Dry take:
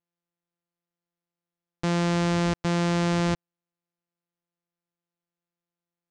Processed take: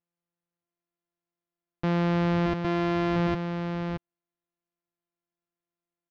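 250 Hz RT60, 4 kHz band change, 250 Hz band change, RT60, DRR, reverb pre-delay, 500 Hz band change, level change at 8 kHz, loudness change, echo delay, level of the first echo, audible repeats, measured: none, -6.0 dB, -0.5 dB, none, none, none, 0.0 dB, under -15 dB, -2.0 dB, 0.624 s, -6.5 dB, 1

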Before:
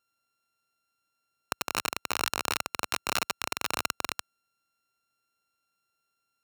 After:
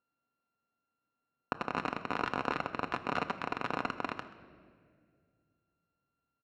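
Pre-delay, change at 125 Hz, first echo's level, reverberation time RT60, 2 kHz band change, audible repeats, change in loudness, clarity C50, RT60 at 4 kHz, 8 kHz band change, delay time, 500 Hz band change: 4 ms, +2.5 dB, -19.5 dB, 2.0 s, -4.5 dB, 1, -5.0 dB, 12.0 dB, 1.4 s, under -25 dB, 0.131 s, +1.0 dB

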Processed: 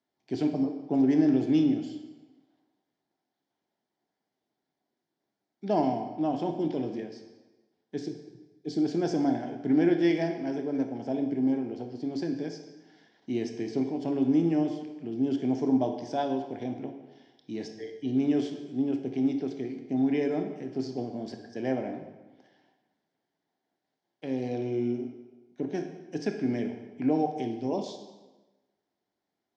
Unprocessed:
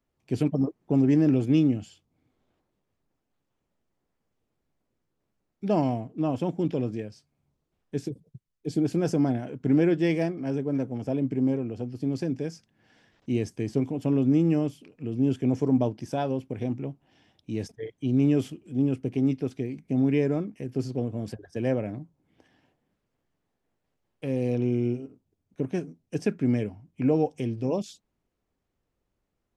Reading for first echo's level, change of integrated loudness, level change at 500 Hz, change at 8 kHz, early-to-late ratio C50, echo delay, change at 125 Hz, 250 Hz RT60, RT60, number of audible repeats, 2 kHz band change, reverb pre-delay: none, -2.0 dB, -2.0 dB, n/a, 7.0 dB, none, -10.0 dB, 1.2 s, 1.2 s, none, -1.5 dB, 21 ms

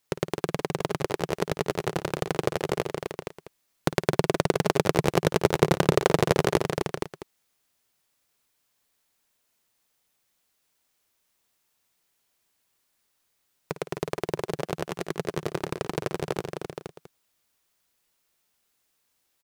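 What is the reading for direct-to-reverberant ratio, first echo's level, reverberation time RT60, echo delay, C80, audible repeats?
none, -14.5 dB, none, 54 ms, none, 4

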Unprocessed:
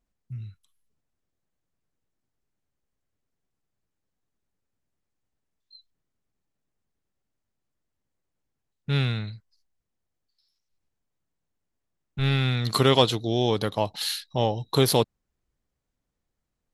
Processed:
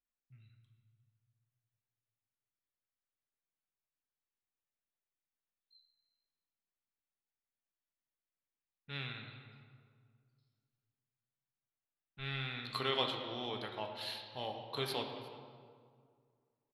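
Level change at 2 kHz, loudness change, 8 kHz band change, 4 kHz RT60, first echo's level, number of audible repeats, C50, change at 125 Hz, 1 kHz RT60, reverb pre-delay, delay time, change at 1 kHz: -9.5 dB, -15.5 dB, -23.5 dB, 1.3 s, -20.5 dB, 1, 5.5 dB, -21.5 dB, 2.0 s, 3 ms, 0.356 s, -13.0 dB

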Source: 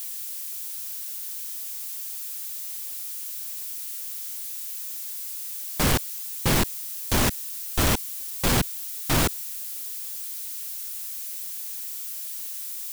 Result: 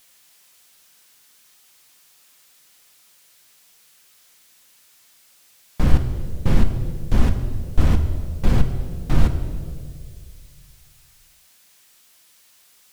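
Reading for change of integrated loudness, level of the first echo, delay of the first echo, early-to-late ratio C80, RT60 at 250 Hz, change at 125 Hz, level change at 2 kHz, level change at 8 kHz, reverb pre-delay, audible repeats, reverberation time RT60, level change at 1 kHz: +4.0 dB, none, none, 10.5 dB, 2.2 s, +8.0 dB, -7.5 dB, -17.0 dB, 4 ms, none, 2.0 s, -5.0 dB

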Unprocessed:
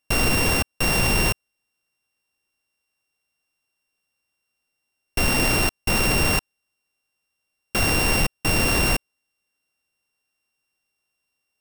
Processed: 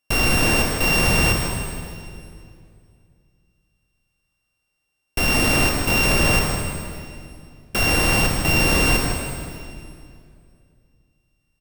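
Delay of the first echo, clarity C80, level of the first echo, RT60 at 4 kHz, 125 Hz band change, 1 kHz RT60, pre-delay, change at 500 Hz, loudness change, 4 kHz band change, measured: 0.157 s, 2.0 dB, -7.0 dB, 2.1 s, +3.5 dB, 2.2 s, 25 ms, +3.0 dB, +2.0 dB, +2.5 dB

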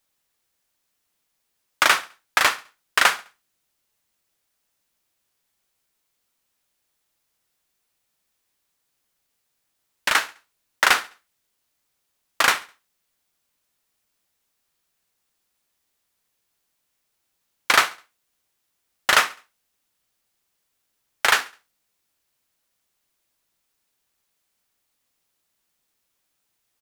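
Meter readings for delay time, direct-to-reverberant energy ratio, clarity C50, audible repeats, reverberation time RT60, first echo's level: 69 ms, none, none, 2, none, -21.0 dB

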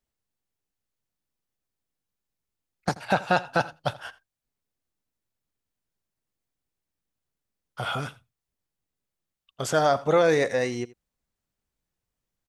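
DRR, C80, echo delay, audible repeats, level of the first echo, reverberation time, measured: none, none, 83 ms, 1, -20.0 dB, none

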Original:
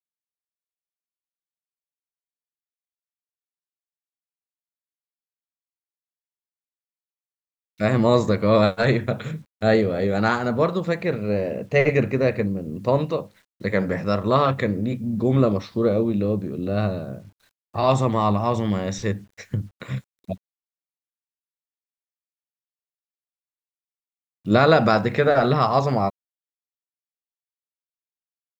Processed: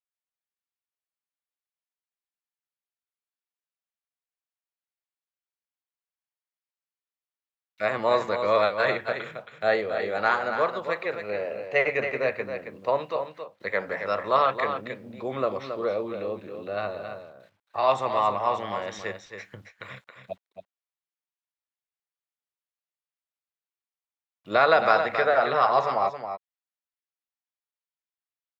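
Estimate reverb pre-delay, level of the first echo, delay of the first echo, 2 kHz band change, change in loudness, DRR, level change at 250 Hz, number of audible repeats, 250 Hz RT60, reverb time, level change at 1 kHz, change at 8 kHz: none, -8.0 dB, 0.272 s, +0.5 dB, -4.5 dB, none, -16.5 dB, 1, none, none, 0.0 dB, n/a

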